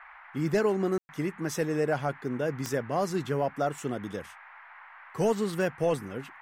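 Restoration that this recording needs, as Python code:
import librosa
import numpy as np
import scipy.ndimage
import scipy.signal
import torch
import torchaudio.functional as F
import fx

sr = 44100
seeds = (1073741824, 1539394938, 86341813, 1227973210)

y = fx.fix_declick_ar(x, sr, threshold=10.0)
y = fx.fix_ambience(y, sr, seeds[0], print_start_s=4.44, print_end_s=4.94, start_s=0.98, end_s=1.09)
y = fx.noise_reduce(y, sr, print_start_s=4.44, print_end_s=4.94, reduce_db=24.0)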